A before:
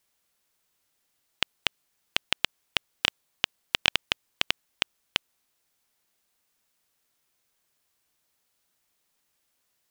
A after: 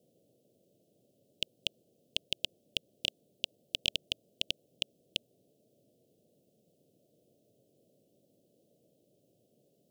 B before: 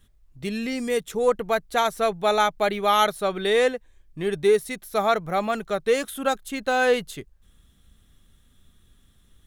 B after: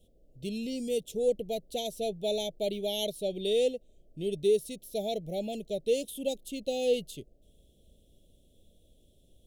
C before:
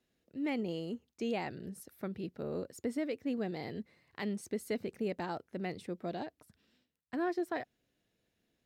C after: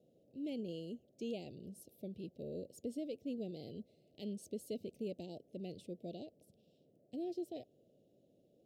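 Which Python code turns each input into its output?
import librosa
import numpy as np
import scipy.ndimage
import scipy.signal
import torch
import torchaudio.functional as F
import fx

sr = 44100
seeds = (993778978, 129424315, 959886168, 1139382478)

y = fx.dmg_noise_band(x, sr, seeds[0], low_hz=110.0, high_hz=710.0, level_db=-64.0)
y = scipy.signal.sosfilt(scipy.signal.ellip(3, 1.0, 70, [600.0, 2900.0], 'bandstop', fs=sr, output='sos'), y)
y = F.gain(torch.from_numpy(y), -5.5).numpy()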